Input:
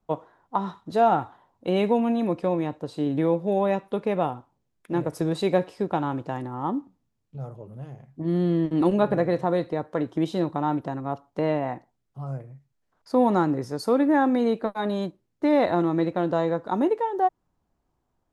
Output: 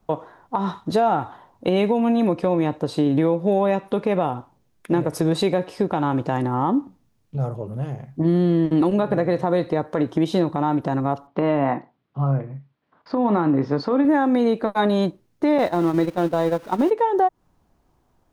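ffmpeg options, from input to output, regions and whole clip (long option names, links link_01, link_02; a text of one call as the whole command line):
ffmpeg -i in.wav -filter_complex "[0:a]asettb=1/sr,asplit=3[link_01][link_02][link_03];[link_01]atrim=end=11.274[link_04];[link_02]atrim=start=11.27:end=14.05,asetpts=PTS-STARTPTS,afade=type=in:duration=0.004:curve=qsin,afade=type=out:start_time=2.776:duration=0.004:curve=qsin,acompressor=threshold=-22dB:ratio=6:attack=3.2:release=140:knee=1:detection=peak,highpass=130,equalizer=frequency=150:width_type=q:width=4:gain=4,equalizer=frequency=270:width_type=q:width=4:gain=4,equalizer=frequency=1100:width_type=q:width=4:gain=4,lowpass=frequency=3700:width=0.5412,lowpass=frequency=3700:width=1.3066,asplit=2[link_05][link_06];[link_06]adelay=29,volume=-13dB[link_07];[link_05][link_07]amix=inputs=2:normalize=0,atrim=end_sample=122598[link_08];[link_03]atrim=start=14.046[link_09];[link_04][link_08]acrossfade=duration=0.004:curve1=hsin:curve2=qsin[link_10];[link_10][link_09]acrossfade=duration=0.004:curve1=qsin:curve2=hsin,asettb=1/sr,asplit=3[link_11][link_12][link_13];[link_11]atrim=end=15.584[link_14];[link_12]atrim=start=15.58:end=16.91,asetpts=PTS-STARTPTS,afade=type=in:duration=0.004:curve=qsin,afade=type=out:start_time=1.326:duration=0.004:curve=qsin,aeval=exprs='val(0)+0.5*0.0178*sgn(val(0))':channel_layout=same,agate=range=-15dB:threshold=-24dB:ratio=16:release=100:detection=peak[link_15];[link_13]atrim=start=16.906[link_16];[link_14][link_15]acrossfade=duration=0.004:curve1=hsin:curve2=qsin[link_17];[link_17][link_16]acrossfade=duration=0.004:curve1=qsin:curve2=hsin,bandreject=frequency=7500:width=20,acompressor=threshold=-26dB:ratio=6,alimiter=level_in=19.5dB:limit=-1dB:release=50:level=0:latency=1,volume=-8.5dB" out.wav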